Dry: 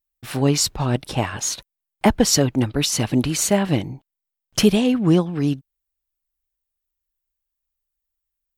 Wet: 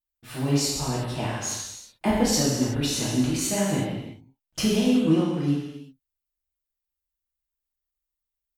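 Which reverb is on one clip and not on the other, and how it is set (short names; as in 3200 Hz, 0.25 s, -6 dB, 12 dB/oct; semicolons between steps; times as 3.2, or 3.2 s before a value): non-linear reverb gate 0.4 s falling, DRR -6.5 dB; gain -12.5 dB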